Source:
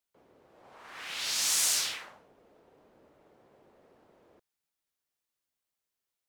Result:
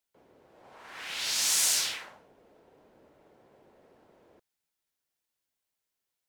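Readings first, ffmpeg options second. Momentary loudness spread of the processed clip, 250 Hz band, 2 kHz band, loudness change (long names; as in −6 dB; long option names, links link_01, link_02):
17 LU, +1.5 dB, +1.5 dB, +1.5 dB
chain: -af "bandreject=frequency=1200:width=15,volume=1.5dB"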